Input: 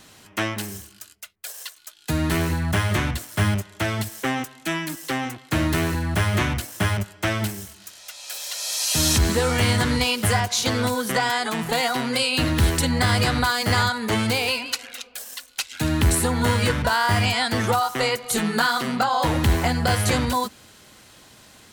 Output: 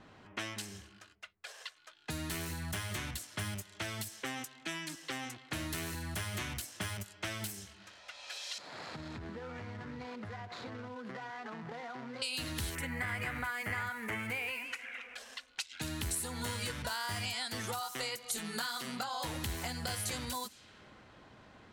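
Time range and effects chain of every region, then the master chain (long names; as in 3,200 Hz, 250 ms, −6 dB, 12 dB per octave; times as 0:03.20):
0:08.58–0:12.22: running median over 15 samples + high-pass filter 89 Hz 24 dB per octave + downward compressor 8 to 1, threshold −31 dBFS
0:12.75–0:15.15: spike at every zero crossing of −27.5 dBFS + high shelf with overshoot 3,000 Hz −12 dB, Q 3
whole clip: low-pass that shuts in the quiet parts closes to 1,100 Hz, open at −21.5 dBFS; high-shelf EQ 2,500 Hz +12 dB; downward compressor 2.5 to 1, threshold −39 dBFS; level −4.5 dB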